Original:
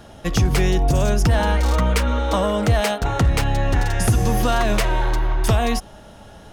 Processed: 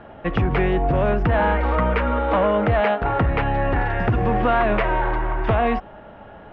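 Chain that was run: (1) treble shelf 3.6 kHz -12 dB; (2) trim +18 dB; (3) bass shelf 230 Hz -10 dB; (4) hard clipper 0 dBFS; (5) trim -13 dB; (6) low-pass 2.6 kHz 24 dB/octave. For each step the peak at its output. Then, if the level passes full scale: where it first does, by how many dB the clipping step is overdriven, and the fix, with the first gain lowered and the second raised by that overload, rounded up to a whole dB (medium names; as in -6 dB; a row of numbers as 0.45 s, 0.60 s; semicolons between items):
-10.0 dBFS, +8.0 dBFS, +6.5 dBFS, 0.0 dBFS, -13.0 dBFS, -11.5 dBFS; step 2, 6.5 dB; step 2 +11 dB, step 5 -6 dB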